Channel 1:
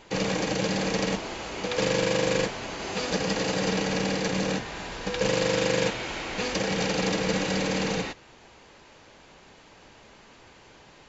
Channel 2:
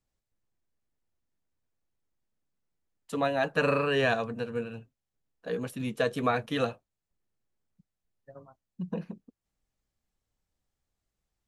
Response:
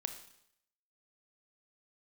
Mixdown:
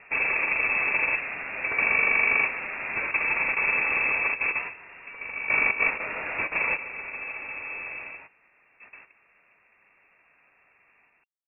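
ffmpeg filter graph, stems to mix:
-filter_complex "[0:a]volume=2dB,asplit=2[a][b];[b]volume=-14.5dB[c];[1:a]acrusher=bits=4:mix=0:aa=0.5,volume=-16.5dB,asplit=2[d][e];[e]apad=whole_len=489007[f];[a][f]sidechaingate=range=-14dB:threshold=-54dB:ratio=16:detection=peak[g];[c]aecho=0:1:147:1[h];[g][d][h]amix=inputs=3:normalize=0,highpass=43,lowpass=f=2.4k:t=q:w=0.5098,lowpass=f=2.4k:t=q:w=0.6013,lowpass=f=2.4k:t=q:w=0.9,lowpass=f=2.4k:t=q:w=2.563,afreqshift=-2800"

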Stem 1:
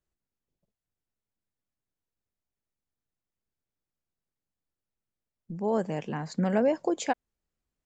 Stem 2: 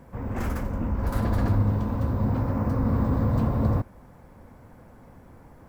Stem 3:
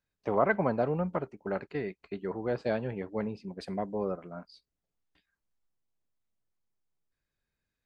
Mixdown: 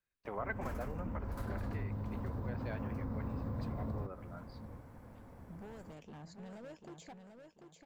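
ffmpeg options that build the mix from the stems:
-filter_complex "[0:a]acrossover=split=1500|3100[a][b][c];[a]acompressor=threshold=-34dB:ratio=4[d];[b]acompressor=threshold=-59dB:ratio=4[e];[c]acompressor=threshold=-49dB:ratio=4[f];[d][e][f]amix=inputs=3:normalize=0,asoftclip=type=hard:threshold=-36dB,volume=-11dB,asplit=2[g][h];[h]volume=-6.5dB[i];[1:a]acompressor=threshold=-27dB:ratio=2,adelay=250,volume=-6dB,asplit=2[j][k];[k]volume=-17.5dB[l];[2:a]equalizer=f=1.9k:w=0.58:g=10.5,volume=-13dB[m];[i][l]amix=inputs=2:normalize=0,aecho=0:1:742|1484|2226|2968|3710:1|0.36|0.13|0.0467|0.0168[n];[g][j][m][n]amix=inputs=4:normalize=0,acompressor=threshold=-40dB:ratio=2"

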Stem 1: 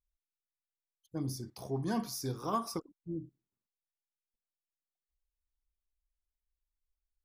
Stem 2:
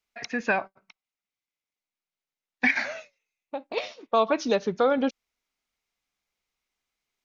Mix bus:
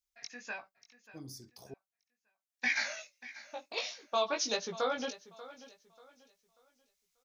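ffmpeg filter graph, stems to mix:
-filter_complex "[0:a]equalizer=f=11k:w=0.84:g=-14,volume=-9.5dB,asplit=3[a][b][c];[a]atrim=end=1.74,asetpts=PTS-STARTPTS,afade=t=out:st=1.736:d=0.004:c=hsin[d];[b]atrim=start=1.74:end=4.35,asetpts=PTS-STARTPTS,volume=0[e];[c]atrim=start=4.35,asetpts=PTS-STARTPTS,afade=t=in:d=0.004:c=hsin[f];[d][e][f]concat=n=3:v=0:a=1[g];[1:a]highpass=70,equalizer=f=330:w=0.66:g=-7.5,flanger=delay=17:depth=3.5:speed=1.5,volume=-3dB,afade=t=in:st=2.48:d=0.32:silence=0.316228,asplit=2[h][i];[i]volume=-17dB,aecho=0:1:588|1176|1764|2352:1|0.3|0.09|0.027[j];[g][h][j]amix=inputs=3:normalize=0,bass=f=250:g=-4,treble=f=4k:g=15"

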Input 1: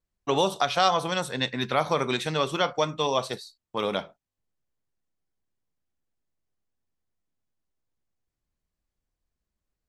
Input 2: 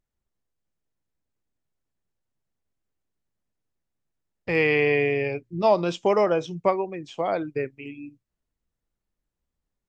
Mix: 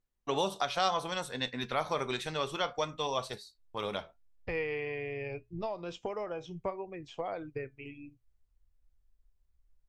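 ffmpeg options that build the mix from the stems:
-filter_complex "[0:a]volume=-2.5dB[a];[1:a]highshelf=f=4.9k:g=-6.5,acompressor=threshold=-27dB:ratio=8,volume=-0.5dB[b];[a][b]amix=inputs=2:normalize=0,asubboost=boost=10.5:cutoff=63,flanger=delay=4:depth=1.2:regen=84:speed=0.68:shape=sinusoidal"

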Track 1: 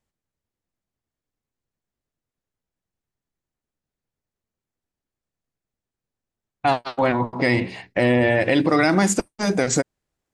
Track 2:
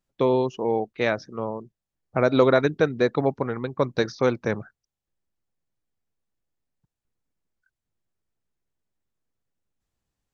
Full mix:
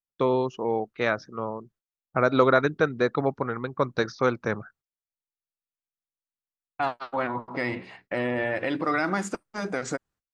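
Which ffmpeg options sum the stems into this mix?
-filter_complex "[0:a]lowpass=f=3.7k:p=1,lowshelf=f=120:g=-9.5,adelay=150,volume=-9dB[a];[1:a]volume=-3dB[b];[a][b]amix=inputs=2:normalize=0,agate=range=-22dB:threshold=-58dB:ratio=16:detection=peak,equalizer=f=1.3k:w=2.2:g=8"

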